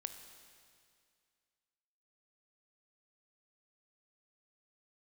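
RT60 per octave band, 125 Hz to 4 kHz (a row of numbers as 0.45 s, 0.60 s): 2.2 s, 2.2 s, 2.2 s, 2.2 s, 2.2 s, 2.2 s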